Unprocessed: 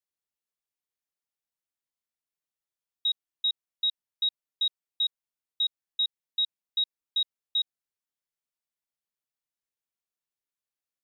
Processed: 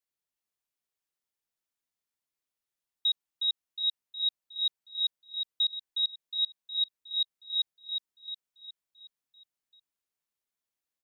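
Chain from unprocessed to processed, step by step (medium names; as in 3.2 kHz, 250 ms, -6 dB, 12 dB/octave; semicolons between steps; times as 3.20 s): feedback delay 363 ms, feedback 50%, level -5 dB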